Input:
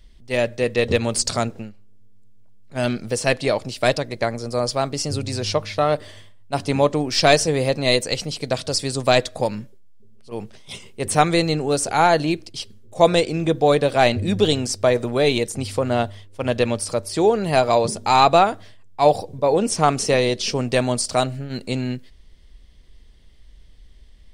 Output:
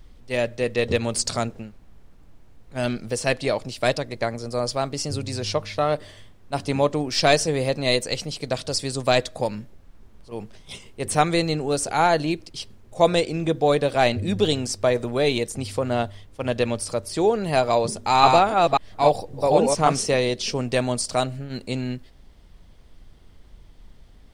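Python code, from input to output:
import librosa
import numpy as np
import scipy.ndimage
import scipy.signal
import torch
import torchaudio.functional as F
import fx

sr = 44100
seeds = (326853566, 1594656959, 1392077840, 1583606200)

y = fx.reverse_delay(x, sr, ms=271, wet_db=-1.5, at=(17.96, 20.02))
y = fx.dmg_noise_colour(y, sr, seeds[0], colour='brown', level_db=-47.0)
y = y * librosa.db_to_amplitude(-3.0)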